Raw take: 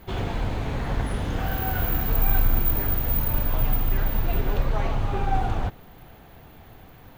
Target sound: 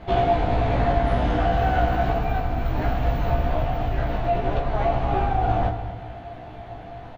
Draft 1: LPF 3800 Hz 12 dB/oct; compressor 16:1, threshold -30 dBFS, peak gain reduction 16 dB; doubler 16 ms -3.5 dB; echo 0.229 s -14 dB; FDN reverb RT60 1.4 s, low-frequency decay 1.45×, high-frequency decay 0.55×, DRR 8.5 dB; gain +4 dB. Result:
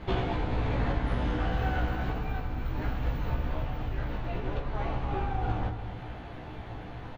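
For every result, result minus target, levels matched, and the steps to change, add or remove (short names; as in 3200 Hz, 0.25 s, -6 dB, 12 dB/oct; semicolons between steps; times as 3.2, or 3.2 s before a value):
compressor: peak gain reduction +8 dB; 500 Hz band -3.0 dB
change: compressor 16:1, threshold -21.5 dBFS, peak gain reduction 8 dB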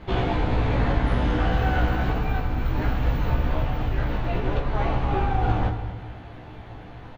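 500 Hz band -4.0 dB
add after LPF: bell 690 Hz +14.5 dB 0.21 oct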